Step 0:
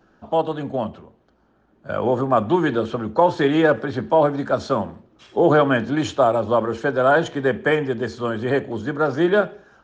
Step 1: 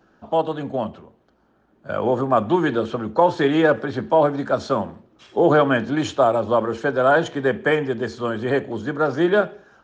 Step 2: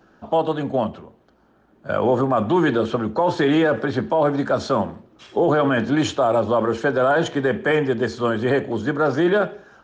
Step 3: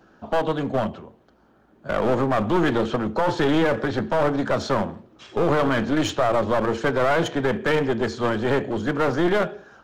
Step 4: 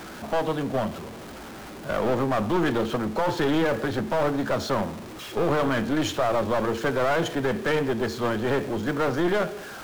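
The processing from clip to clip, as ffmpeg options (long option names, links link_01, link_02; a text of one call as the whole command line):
ffmpeg -i in.wav -af "lowshelf=frequency=79:gain=-5.5" out.wav
ffmpeg -i in.wav -af "alimiter=limit=-13.5dB:level=0:latency=1:release=13,volume=3.5dB" out.wav
ffmpeg -i in.wav -af "aeval=exprs='clip(val(0),-1,0.0708)':channel_layout=same" out.wav
ffmpeg -i in.wav -af "aeval=exprs='val(0)+0.5*0.0299*sgn(val(0))':channel_layout=same,volume=-4dB" out.wav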